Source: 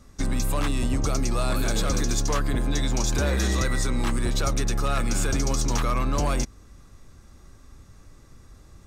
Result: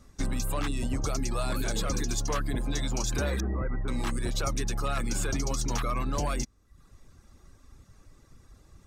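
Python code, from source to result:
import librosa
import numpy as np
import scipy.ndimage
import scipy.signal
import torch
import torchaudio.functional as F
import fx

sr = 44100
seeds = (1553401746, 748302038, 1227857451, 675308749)

y = fx.bessel_lowpass(x, sr, hz=1100.0, order=6, at=(3.4, 3.88))
y = fx.dereverb_blind(y, sr, rt60_s=0.69)
y = F.gain(torch.from_numpy(y), -3.5).numpy()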